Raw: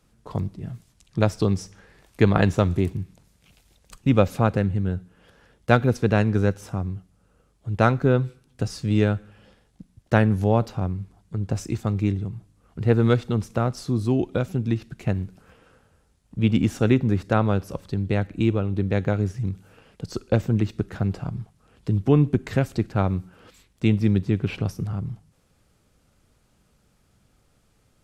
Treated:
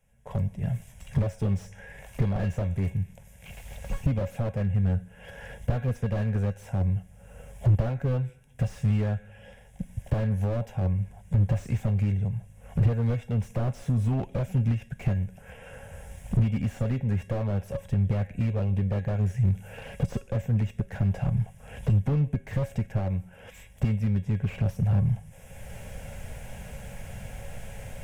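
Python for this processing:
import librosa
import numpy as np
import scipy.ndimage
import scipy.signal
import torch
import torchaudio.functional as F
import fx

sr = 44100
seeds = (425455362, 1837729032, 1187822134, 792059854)

y = fx.recorder_agc(x, sr, target_db=-5.5, rise_db_per_s=23.0, max_gain_db=30)
y = fx.fixed_phaser(y, sr, hz=1200.0, stages=6)
y = fx.comb_fb(y, sr, f0_hz=550.0, decay_s=0.19, harmonics='all', damping=0.0, mix_pct=70)
y = fx.slew_limit(y, sr, full_power_hz=11.0)
y = y * 10.0 ** (4.5 / 20.0)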